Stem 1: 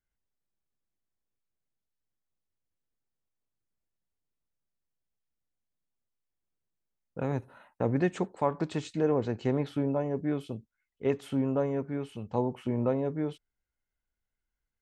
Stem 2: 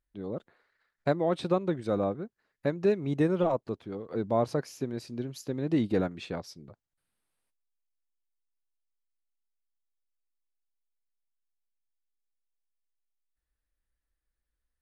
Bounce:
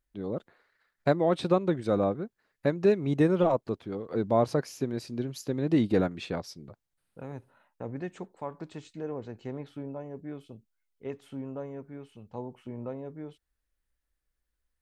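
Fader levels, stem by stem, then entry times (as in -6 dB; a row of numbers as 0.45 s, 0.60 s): -9.5 dB, +2.5 dB; 0.00 s, 0.00 s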